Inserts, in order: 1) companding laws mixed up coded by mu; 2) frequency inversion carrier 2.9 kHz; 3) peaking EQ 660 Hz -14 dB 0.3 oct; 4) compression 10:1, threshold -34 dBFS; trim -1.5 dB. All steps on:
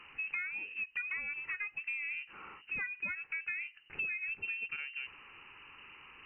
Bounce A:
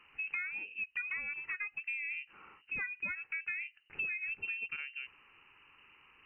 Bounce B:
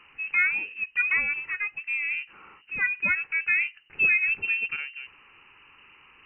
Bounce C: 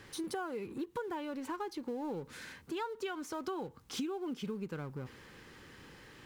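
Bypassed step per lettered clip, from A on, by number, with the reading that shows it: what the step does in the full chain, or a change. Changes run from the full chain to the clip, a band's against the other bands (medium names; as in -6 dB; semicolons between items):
1, distortion -24 dB; 4, mean gain reduction 7.0 dB; 2, 2 kHz band -33.5 dB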